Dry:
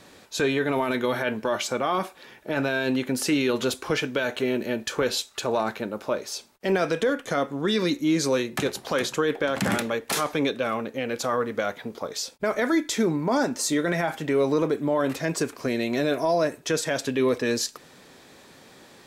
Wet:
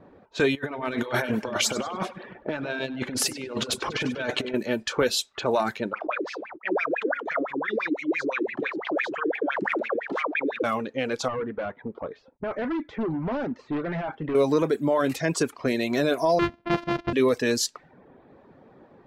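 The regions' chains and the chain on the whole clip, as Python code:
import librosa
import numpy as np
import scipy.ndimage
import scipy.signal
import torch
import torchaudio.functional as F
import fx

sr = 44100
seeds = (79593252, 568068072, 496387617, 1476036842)

y = fx.chain(x, sr, fx.over_compress(threshold_db=-29.0, ratio=-0.5),
    fx.echo_split(split_hz=650.0, low_ms=152, high_ms=98, feedback_pct=52, wet_db=-9), at=(0.55, 4.54))
y = fx.chain(y, sr, fx.wah_lfo(hz=5.9, low_hz=300.0, high_hz=2500.0, q=14.0),
    fx.env_flatten(amount_pct=70), at=(5.93, 10.64))
y = fx.chain(y, sr, fx.overload_stage(gain_db=25.5),
    fx.spacing_loss(db_at_10k=29),
    fx.doppler_dist(depth_ms=0.16), at=(11.28, 14.35))
y = fx.chain(y, sr, fx.sample_sort(block=128),
    fx.air_absorb(metres=270.0), at=(16.39, 17.13))
y = fx.env_lowpass(y, sr, base_hz=780.0, full_db=-22.5)
y = fx.dereverb_blind(y, sr, rt60_s=0.57)
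y = F.gain(torch.from_numpy(y), 2.0).numpy()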